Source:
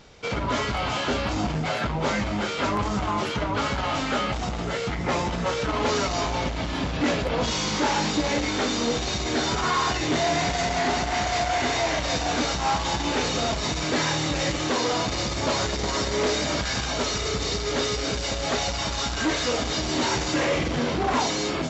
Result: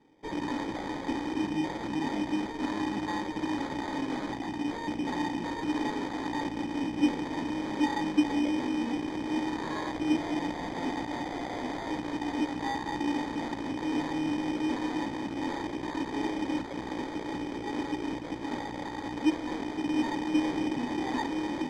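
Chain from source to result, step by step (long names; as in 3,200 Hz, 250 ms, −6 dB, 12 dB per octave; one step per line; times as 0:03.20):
bass and treble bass +3 dB, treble −4 dB
harmonic generator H 6 −7 dB, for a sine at −14 dBFS
formant filter u
decimation without filtering 16×
high-frequency loss of the air 110 metres
level +2 dB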